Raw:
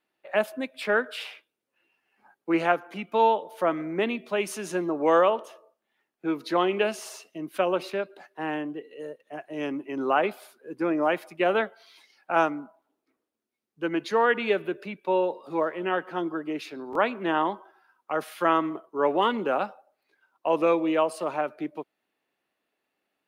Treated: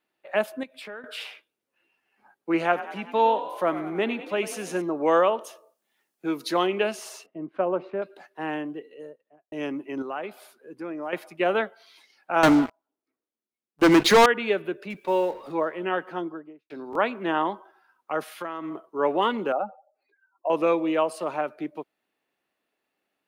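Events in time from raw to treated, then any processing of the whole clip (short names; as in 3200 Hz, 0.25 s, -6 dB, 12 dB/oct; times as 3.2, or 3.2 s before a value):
0.63–1.04 compressor 4:1, threshold -39 dBFS
2.63–4.82 frequency-shifting echo 96 ms, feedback 63%, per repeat +40 Hz, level -13.5 dB
5.41–6.67 tone controls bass 0 dB, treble +11 dB
7.26–8.02 LPF 1200 Hz
8.74–9.52 studio fade out
10.02–11.13 compressor 1.5:1, threshold -46 dBFS
12.43–14.26 sample leveller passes 5
14.9–15.52 G.711 law mismatch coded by mu
16.04–16.7 studio fade out
18.31–18.89 compressor, threshold -29 dBFS
19.52–20.5 spectral contrast raised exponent 2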